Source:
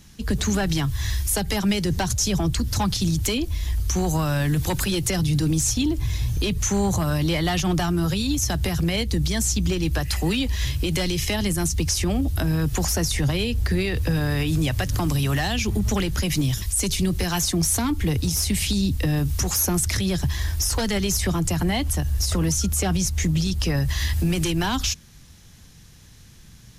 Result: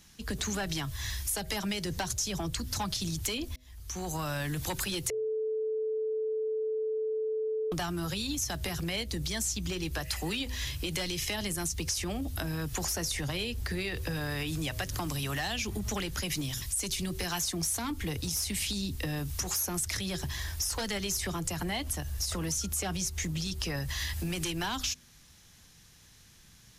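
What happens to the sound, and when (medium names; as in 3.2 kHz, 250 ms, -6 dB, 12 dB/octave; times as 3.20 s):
3.56–4.30 s: fade in
5.10–7.72 s: bleep 437 Hz -19.5 dBFS
whole clip: bass shelf 380 Hz -8.5 dB; de-hum 126.5 Hz, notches 5; compression, threshold -24 dBFS; trim -4.5 dB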